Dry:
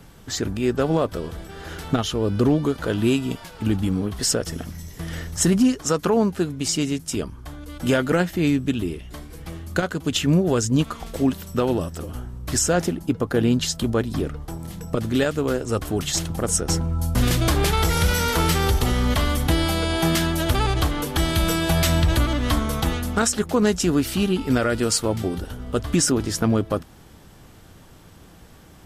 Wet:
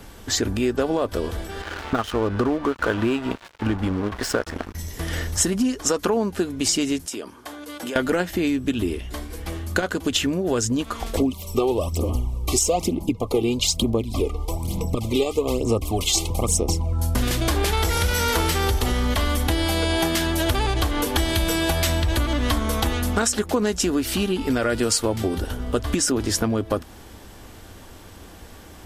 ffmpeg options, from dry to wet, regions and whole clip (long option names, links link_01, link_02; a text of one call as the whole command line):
ffmpeg -i in.wav -filter_complex "[0:a]asettb=1/sr,asplit=3[link_01][link_02][link_03];[link_01]atrim=end=1.624[link_04];[link_02]atrim=start=1.62:end=4.75,asetpts=PTS-STARTPTS,afade=type=in:duration=0.004:curve=qsin,afade=type=out:start_time=3.126:duration=0.004:curve=qsin,lowpass=frequency=2100:poles=1,equalizer=frequency=1300:width_type=o:width=1.5:gain=10,aeval=exprs='sgn(val(0))*max(abs(val(0))-0.0224,0)':channel_layout=same[link_05];[link_03]atrim=start=4.746[link_06];[link_04][link_05]acrossfade=duration=0.004:curve1=hsin:curve2=qsin[link_07];[link_07][link_06]acrossfade=duration=0.004:curve1=qsin:curve2=hsin,asettb=1/sr,asplit=3[link_08][link_09][link_10];[link_08]atrim=end=7.064[link_11];[link_09]atrim=start=7.06:end=7.96,asetpts=PTS-STARTPTS,afade=type=in:duration=0.004:curve=qsin,afade=type=out:start_time=0.896:duration=0.004:curve=qsin,highpass=290,acompressor=threshold=-32dB:ratio=10:attack=3.2:release=140:knee=1:detection=peak[link_12];[link_10]atrim=start=7.956[link_13];[link_11][link_12]acrossfade=duration=0.004:curve1=hsin:curve2=qsin[link_14];[link_14][link_13]acrossfade=duration=0.004:curve1=qsin:curve2=hsin,asettb=1/sr,asplit=3[link_15][link_16][link_17];[link_15]atrim=end=11.174[link_18];[link_16]atrim=start=11.17:end=16.93,asetpts=PTS-STARTPTS,afade=type=in:duration=0.004:curve=qsin,afade=type=out:start_time=5.756:duration=0.004:curve=qsin,aphaser=in_gain=1:out_gain=1:delay=2.6:decay=0.58:speed=1.1:type=sinusoidal,asuperstop=centerf=1600:order=12:qfactor=1.9[link_19];[link_17]atrim=start=16.926[link_20];[link_18][link_19]acrossfade=duration=0.004:curve1=hsin:curve2=qsin[link_21];[link_21][link_20]acrossfade=duration=0.004:curve1=qsin:curve2=hsin,bandreject=frequency=1300:width=21,acompressor=threshold=-23dB:ratio=6,equalizer=frequency=150:width_type=o:width=0.42:gain=-15,volume=6dB" out.wav